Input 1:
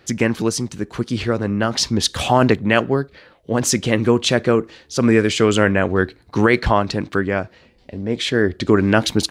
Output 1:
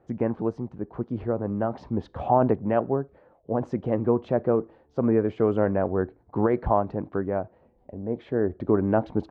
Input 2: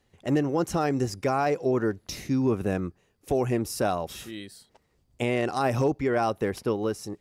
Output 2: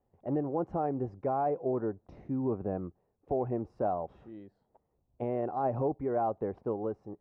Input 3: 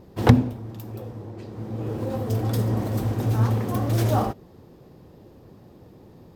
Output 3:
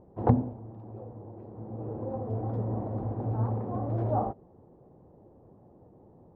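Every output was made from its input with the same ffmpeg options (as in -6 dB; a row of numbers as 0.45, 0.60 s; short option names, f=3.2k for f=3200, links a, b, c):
-af "lowpass=f=790:t=q:w=1.8,volume=-8.5dB"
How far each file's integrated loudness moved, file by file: -7.5, -6.0, -7.5 LU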